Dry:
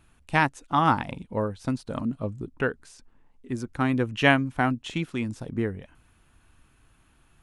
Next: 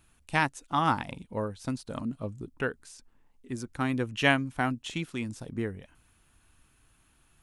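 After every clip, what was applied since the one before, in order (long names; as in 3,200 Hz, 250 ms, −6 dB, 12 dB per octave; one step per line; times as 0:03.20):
high-shelf EQ 3,800 Hz +8.5 dB
level −5 dB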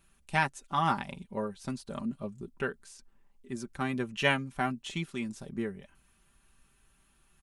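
comb filter 5.1 ms, depth 65%
level −3.5 dB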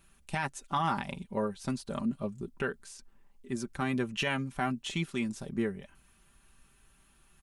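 brickwall limiter −23.5 dBFS, peak gain reduction 11.5 dB
level +3 dB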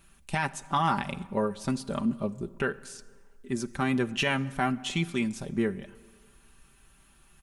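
dense smooth reverb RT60 1.6 s, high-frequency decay 0.65×, DRR 17 dB
level +4 dB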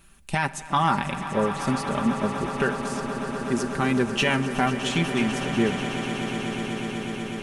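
echo that builds up and dies away 123 ms, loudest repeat 8, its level −14 dB
level +4 dB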